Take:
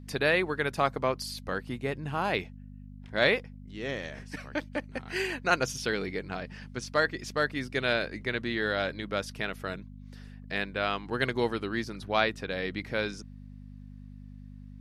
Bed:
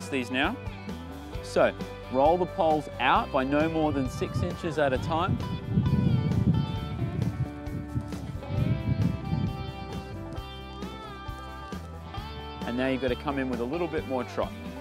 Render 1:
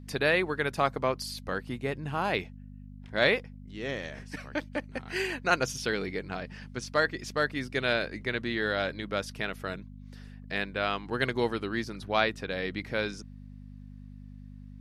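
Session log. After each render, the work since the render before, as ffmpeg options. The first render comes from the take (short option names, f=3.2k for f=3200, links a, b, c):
-af anull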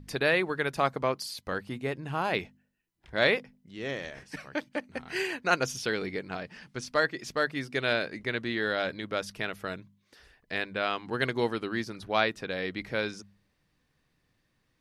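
-af "bandreject=f=50:t=h:w=4,bandreject=f=100:t=h:w=4,bandreject=f=150:t=h:w=4,bandreject=f=200:t=h:w=4,bandreject=f=250:t=h:w=4"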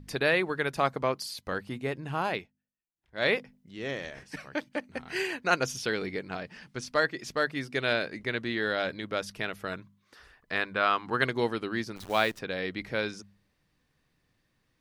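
-filter_complex "[0:a]asettb=1/sr,asplit=3[a][b][c];[a]atrim=end=9.724[d];[b]atrim=start=9.72:end=11.24,asetpts=PTS-STARTPTS,afade=t=in:d=0.004:c=qsin,afade=t=out:st=1.516:d=0.004:c=qsin,equalizer=f=1.2k:w=1.7:g=8.5[e];[c]atrim=start=11.236[f];[d][e]acrossfade=d=0.004:c1=hsin:c2=qsin[g];[g][f]acrossfade=d=0.004:c1=qsin:c2=hsin,asettb=1/sr,asplit=3[h][i][j];[h]atrim=end=11.964[k];[i]atrim=start=11.96:end=12.39,asetpts=PTS-STARTPTS,afade=t=in:d=0.004:c=qsin,afade=t=out:st=0.426:d=0.004:c=qsin,acrusher=bits=8:dc=4:mix=0:aa=0.000001[l];[j]atrim=start=12.386[m];[k][l]acrossfade=d=0.004:c1=hsin:c2=qsin[n];[n][m]acrossfade=d=0.004:c1=qsin:c2=hsin,asplit=3[o][p][q];[o]atrim=end=2.47,asetpts=PTS-STARTPTS,afade=t=out:st=2.27:d=0.2:silence=0.133352[r];[p]atrim=start=2.47:end=3.12,asetpts=PTS-STARTPTS,volume=-17.5dB[s];[q]atrim=start=3.12,asetpts=PTS-STARTPTS,afade=t=in:d=0.2:silence=0.133352[t];[r][s][t]concat=n=3:v=0:a=1"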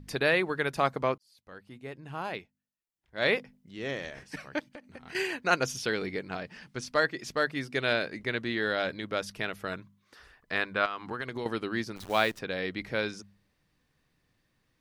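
-filter_complex "[0:a]asettb=1/sr,asplit=3[a][b][c];[a]atrim=end=4.594[d];[b]atrim=start=4.59:end=5.15,asetpts=PTS-STARTPTS,afade=t=in:d=0.004:c=qsin,afade=t=out:st=0.556:d=0.004:c=qsin,acompressor=threshold=-41dB:ratio=12:attack=3.2:release=140:knee=1:detection=peak[e];[c]atrim=start=5.146[f];[d][e]acrossfade=d=0.004:c1=hsin:c2=qsin[g];[g][f]acrossfade=d=0.004:c1=qsin:c2=hsin,asettb=1/sr,asplit=3[h][i][j];[h]atrim=end=10.854[k];[i]atrim=start=10.85:end=11.46,asetpts=PTS-STARTPTS,afade=t=in:d=0.004:c=qsin,afade=t=out:st=0.606:d=0.004:c=qsin,acompressor=threshold=-31dB:ratio=6:attack=3.2:release=140:knee=1:detection=peak[l];[j]atrim=start=11.456[m];[k][l]acrossfade=d=0.004:c1=hsin:c2=qsin[n];[n][m]acrossfade=d=0.004:c1=qsin:c2=hsin,asplit=2[o][p];[o]atrim=end=1.18,asetpts=PTS-STARTPTS,afade=t=out:st=1.176:d=0.004:c=hsin[q];[p]atrim=start=1.18,asetpts=PTS-STARTPTS,afade=t=in:d=2.04[r];[q][r]concat=n=2:v=0:a=1"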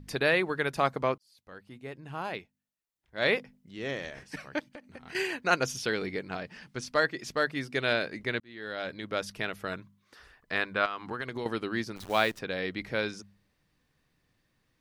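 -filter_complex "[0:a]asplit=2[a][b];[a]atrim=end=8.4,asetpts=PTS-STARTPTS,afade=t=out:st=8.396:d=0.004:c=hsin[c];[b]atrim=start=8.4,asetpts=PTS-STARTPTS,afade=t=in:d=0.79[d];[c][d]concat=n=2:v=0:a=1"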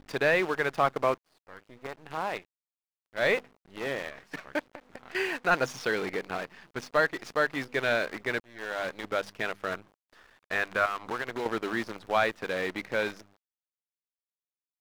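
-filter_complex "[0:a]acrusher=bits=7:dc=4:mix=0:aa=0.000001,asplit=2[a][b];[b]highpass=f=720:p=1,volume=12dB,asoftclip=type=tanh:threshold=-9dB[c];[a][c]amix=inputs=2:normalize=0,lowpass=f=1.3k:p=1,volume=-6dB"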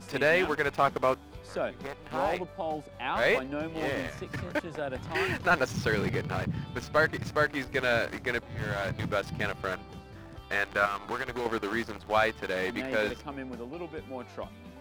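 -filter_complex "[1:a]volume=-9.5dB[a];[0:a][a]amix=inputs=2:normalize=0"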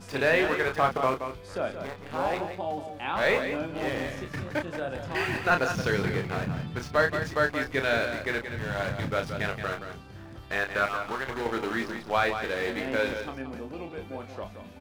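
-filter_complex "[0:a]asplit=2[a][b];[b]adelay=30,volume=-6.5dB[c];[a][c]amix=inputs=2:normalize=0,aecho=1:1:175:0.376"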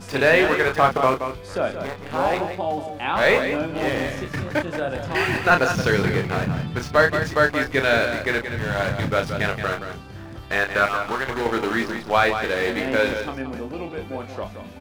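-af "volume=7dB"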